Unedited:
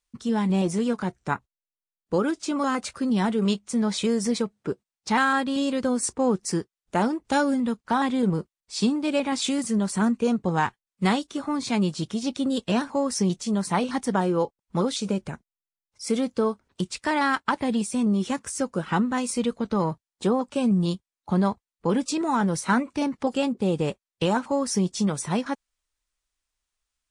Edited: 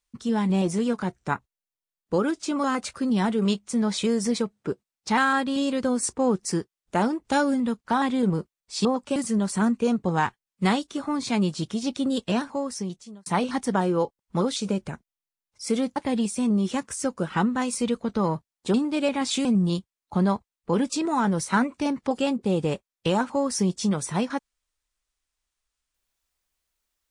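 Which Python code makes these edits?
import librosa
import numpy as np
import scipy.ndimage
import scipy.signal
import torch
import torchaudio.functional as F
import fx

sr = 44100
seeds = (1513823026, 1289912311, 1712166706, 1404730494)

y = fx.edit(x, sr, fx.swap(start_s=8.85, length_s=0.71, other_s=20.3, other_length_s=0.31),
    fx.fade_out_span(start_s=12.62, length_s=1.04),
    fx.cut(start_s=16.36, length_s=1.16), tone=tone)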